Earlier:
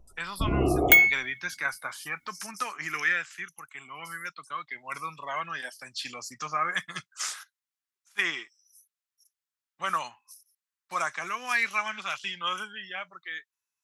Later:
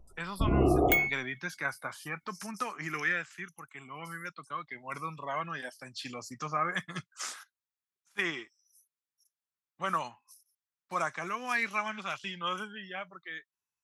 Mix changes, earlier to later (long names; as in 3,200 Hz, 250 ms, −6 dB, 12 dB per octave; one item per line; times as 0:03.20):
speech: add tilt shelving filter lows +6.5 dB, about 750 Hz
second sound −10.5 dB